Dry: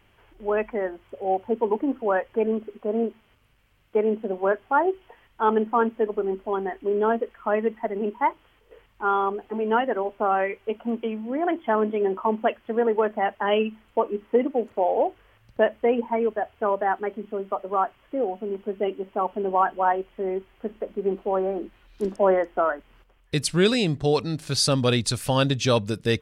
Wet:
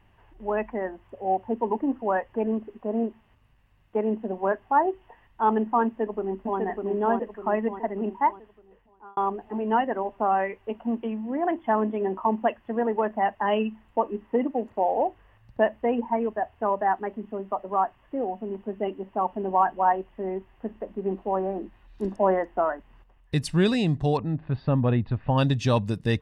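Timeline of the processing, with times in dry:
5.85–6.59 echo throw 0.6 s, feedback 50%, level -3.5 dB
8.18–9.17 fade out linear
24.17–25.38 Gaussian blur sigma 3.8 samples
whole clip: high shelf 2100 Hz -10.5 dB; comb 1.1 ms, depth 41%

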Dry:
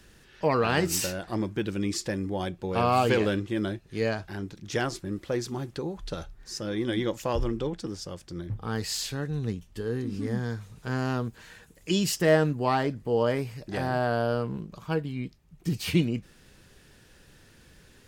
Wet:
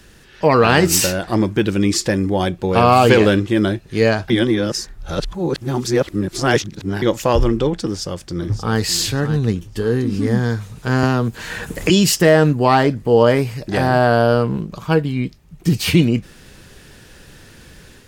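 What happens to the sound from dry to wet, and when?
4.3–7.02 reverse
7.82–8.78 echo throw 0.58 s, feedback 35%, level -10.5 dB
11.03–11.9 three-band squash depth 100%
whole clip: AGC gain up to 4 dB; maximiser +9.5 dB; gain -1 dB

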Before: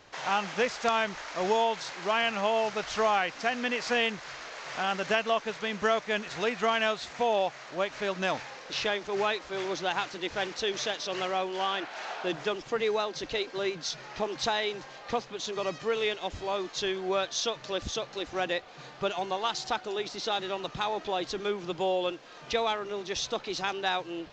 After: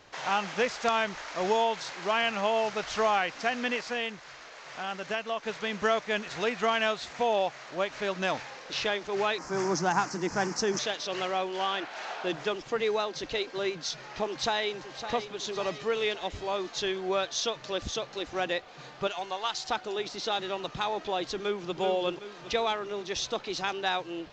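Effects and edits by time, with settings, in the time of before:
3.81–5.43 gain -5.5 dB
9.38–10.79 EQ curve 100 Hz 0 dB, 160 Hz +13 dB, 330 Hz +6 dB, 550 Hz -1 dB, 910 Hz +7 dB, 1700 Hz +2 dB, 3700 Hz -13 dB, 5200 Hz +9 dB
14.28–15.11 echo throw 0.56 s, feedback 55%, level -10 dB
19.07–19.69 bell 200 Hz -9.5 dB 2.7 oct
21.38–21.8 echo throw 0.38 s, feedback 45%, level -6 dB

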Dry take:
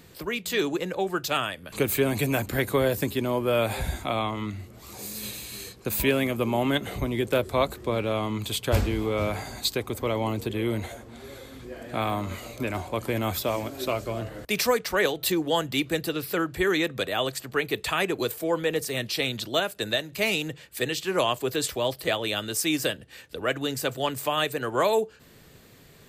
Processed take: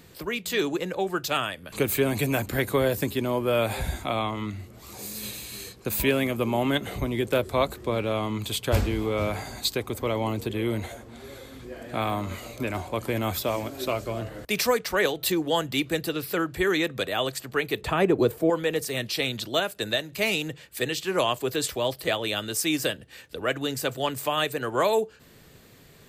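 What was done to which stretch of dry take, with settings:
17.81–18.5 tilt shelf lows +8.5 dB, about 1300 Hz

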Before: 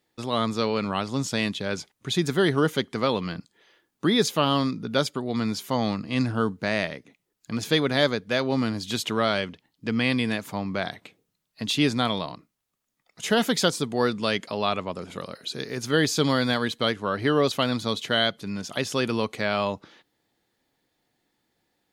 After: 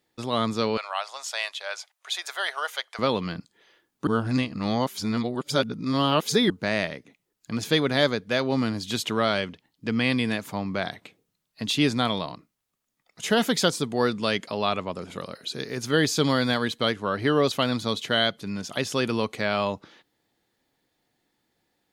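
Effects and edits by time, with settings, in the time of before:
0.77–2.99 elliptic high-pass 630 Hz, stop band 80 dB
4.07–6.5 reverse

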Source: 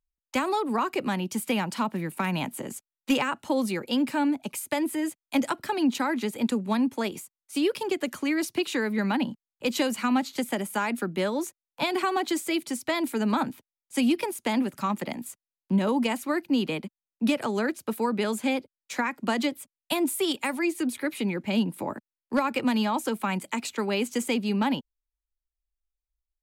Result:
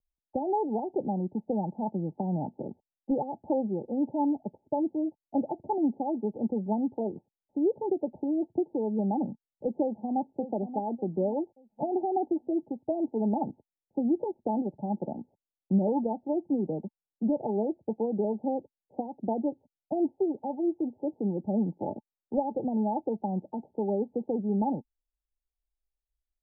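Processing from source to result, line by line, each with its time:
9.82–10.26 echo throw 0.58 s, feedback 35%, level -11 dB
whole clip: Chebyshev low-pass 880 Hz, order 10; dynamic EQ 250 Hz, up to -7 dB, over -43 dBFS, Q 7.5

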